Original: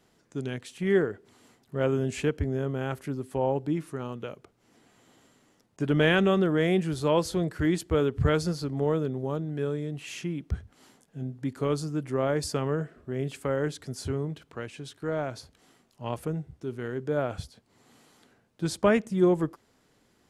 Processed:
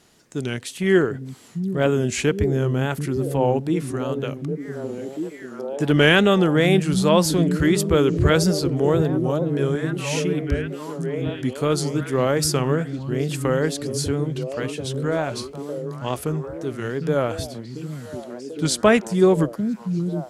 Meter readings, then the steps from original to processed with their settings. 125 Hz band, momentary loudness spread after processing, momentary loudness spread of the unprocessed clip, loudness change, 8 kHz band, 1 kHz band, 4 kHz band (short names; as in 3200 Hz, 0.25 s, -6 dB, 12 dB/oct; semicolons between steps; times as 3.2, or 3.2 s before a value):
+8.0 dB, 14 LU, 14 LU, +7.0 dB, +13.0 dB, +7.5 dB, +11.0 dB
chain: high shelf 2700 Hz +8 dB; delay with a stepping band-pass 0.746 s, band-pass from 170 Hz, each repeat 0.7 oct, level -2 dB; wow and flutter 88 cents; gain +6 dB